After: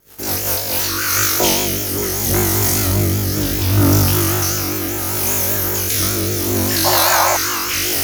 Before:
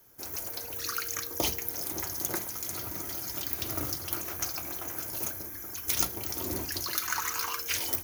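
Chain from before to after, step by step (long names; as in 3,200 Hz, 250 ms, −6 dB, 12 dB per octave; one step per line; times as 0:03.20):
0:02.25–0:04.23: low-shelf EQ 330 Hz +10.5 dB
on a send: flutter between parallel walls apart 3.5 metres, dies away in 1.3 s
on the sum: pitch vibrato 5.1 Hz 92 cents
in parallel at −11 dB: fuzz pedal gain 43 dB, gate −49 dBFS
on the sum: rotating-speaker cabinet horn 5.5 Hz, later 0.7 Hz, at 0:00.31
0:06.84–0:07.37: sound drawn into the spectrogram noise 520–1,100 Hz −24 dBFS
level +6 dB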